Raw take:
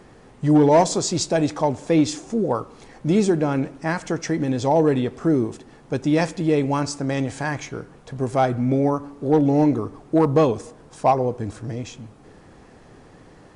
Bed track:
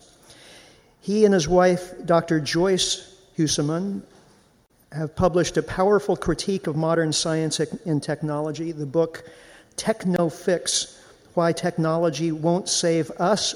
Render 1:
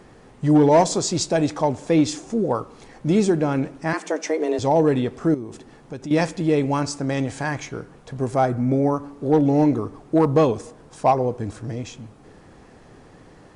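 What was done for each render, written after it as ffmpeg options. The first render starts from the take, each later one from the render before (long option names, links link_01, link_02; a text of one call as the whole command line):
ffmpeg -i in.wav -filter_complex "[0:a]asettb=1/sr,asplit=3[link_01][link_02][link_03];[link_01]atrim=end=3.934[link_04];[link_02]atrim=start=3.93:end=4.59,asetpts=PTS-STARTPTS,afade=type=in:duration=0.004:curve=qsin,afade=type=out:start_time=0.656:duration=0.004:curve=qsin,afreqshift=150[link_05];[link_03]atrim=start=4.586[link_06];[link_04][link_05]acrossfade=duration=0.004:curve1=hsin:curve2=qsin[link_07];[link_07][link_06]acrossfade=duration=0.004:curve1=qsin:curve2=hsin,asettb=1/sr,asplit=3[link_08][link_09][link_10];[link_08]atrim=end=5.344[link_11];[link_09]atrim=start=5.34:end=6.11,asetpts=PTS-STARTPTS,afade=type=in:duration=0.004:curve=qsin,afade=type=out:start_time=0.766:duration=0.004:curve=qsin,acompressor=threshold=-33dB:ratio=2.5:attack=3.2:release=140:knee=1:detection=peak[link_12];[link_10]atrim=start=6.106[link_13];[link_11][link_12]acrossfade=duration=0.004:curve1=hsin:curve2=qsin[link_14];[link_14][link_13]acrossfade=duration=0.004:curve1=qsin:curve2=hsin,asettb=1/sr,asplit=3[link_15][link_16][link_17];[link_15]atrim=end=8.344[link_18];[link_16]atrim=start=8.34:end=8.9,asetpts=PTS-STARTPTS,afade=type=in:duration=0.004:curve=qsin,afade=type=out:start_time=0.556:duration=0.004:curve=qsin,equalizer=frequency=3100:width=1.4:gain=-7[link_19];[link_17]atrim=start=8.896[link_20];[link_18][link_19]acrossfade=duration=0.004:curve1=hsin:curve2=qsin[link_21];[link_21][link_20]acrossfade=duration=0.004:curve1=qsin:curve2=hsin" out.wav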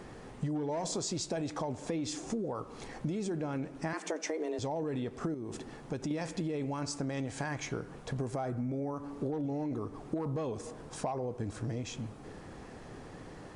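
ffmpeg -i in.wav -af "alimiter=limit=-16dB:level=0:latency=1:release=16,acompressor=threshold=-32dB:ratio=10" out.wav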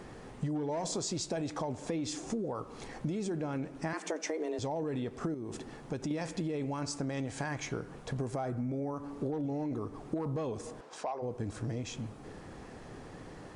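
ffmpeg -i in.wav -filter_complex "[0:a]asplit=3[link_01][link_02][link_03];[link_01]afade=type=out:start_time=10.8:duration=0.02[link_04];[link_02]highpass=460,lowpass=6100,afade=type=in:start_time=10.8:duration=0.02,afade=type=out:start_time=11.21:duration=0.02[link_05];[link_03]afade=type=in:start_time=11.21:duration=0.02[link_06];[link_04][link_05][link_06]amix=inputs=3:normalize=0" out.wav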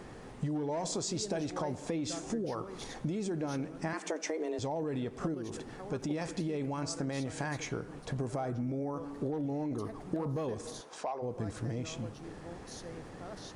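ffmpeg -i in.wav -i bed.wav -filter_complex "[1:a]volume=-26.5dB[link_01];[0:a][link_01]amix=inputs=2:normalize=0" out.wav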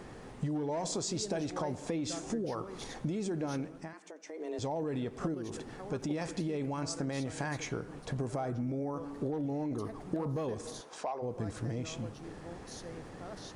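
ffmpeg -i in.wav -filter_complex "[0:a]asplit=3[link_01][link_02][link_03];[link_01]atrim=end=3.94,asetpts=PTS-STARTPTS,afade=type=out:start_time=3.57:duration=0.37:silence=0.199526[link_04];[link_02]atrim=start=3.94:end=4.26,asetpts=PTS-STARTPTS,volume=-14dB[link_05];[link_03]atrim=start=4.26,asetpts=PTS-STARTPTS,afade=type=in:duration=0.37:silence=0.199526[link_06];[link_04][link_05][link_06]concat=n=3:v=0:a=1" out.wav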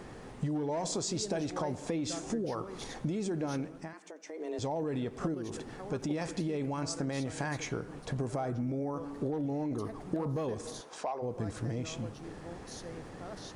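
ffmpeg -i in.wav -af "volume=1dB" out.wav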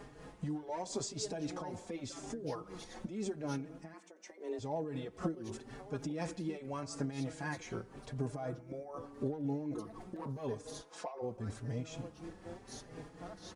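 ffmpeg -i in.wav -filter_complex "[0:a]tremolo=f=4:d=0.58,asplit=2[link_01][link_02];[link_02]adelay=4.5,afreqshift=0.85[link_03];[link_01][link_03]amix=inputs=2:normalize=1" out.wav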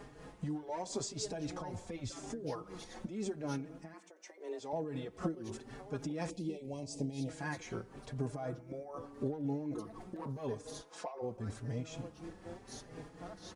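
ffmpeg -i in.wav -filter_complex "[0:a]asettb=1/sr,asplit=3[link_01][link_02][link_03];[link_01]atrim=end=1.044[link_04];[link_02]atrim=start=1.04:end=2.11,asetpts=PTS-STARTPTS,afade=type=in:duration=0.004:curve=qsin,afade=type=out:start_time=1.066:duration=0.004:curve=qsin,asubboost=boost=11:cutoff=130[link_05];[link_03]atrim=start=2.106[link_06];[link_04][link_05]acrossfade=duration=0.004:curve1=hsin:curve2=qsin[link_07];[link_07][link_06]acrossfade=duration=0.004:curve1=qsin:curve2=hsin,asettb=1/sr,asplit=3[link_08][link_09][link_10];[link_08]atrim=end=4.104[link_11];[link_09]atrim=start=4.1:end=4.73,asetpts=PTS-STARTPTS,afade=type=in:duration=0.004:curve=qsin,afade=type=out:start_time=0.626:duration=0.004:curve=qsin,highpass=350[link_12];[link_10]atrim=start=4.726[link_13];[link_11][link_12]acrossfade=duration=0.004:curve1=hsin:curve2=qsin[link_14];[link_14][link_13]acrossfade=duration=0.004:curve1=qsin:curve2=hsin,asettb=1/sr,asplit=3[link_15][link_16][link_17];[link_15]atrim=end=6.304[link_18];[link_16]atrim=start=6.3:end=7.29,asetpts=PTS-STARTPTS,afade=type=in:duration=0.004:curve=qsin,afade=type=out:start_time=0.986:duration=0.004:curve=qsin,asuperstop=centerf=1400:order=4:qfactor=0.68[link_19];[link_17]atrim=start=7.286[link_20];[link_18][link_19]acrossfade=duration=0.004:curve1=hsin:curve2=qsin[link_21];[link_21][link_20]acrossfade=duration=0.004:curve1=qsin:curve2=hsin" out.wav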